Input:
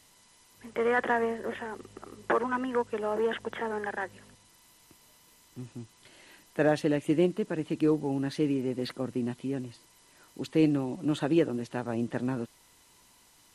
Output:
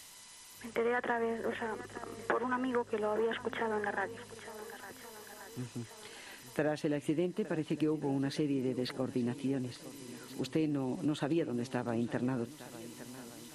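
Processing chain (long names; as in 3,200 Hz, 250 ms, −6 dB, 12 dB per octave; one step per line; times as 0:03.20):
downward compressor 5 to 1, threshold −29 dBFS, peak gain reduction 10 dB
feedback echo with a long and a short gap by turns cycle 1,432 ms, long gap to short 1.5 to 1, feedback 37%, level −16.5 dB
one half of a high-frequency compander encoder only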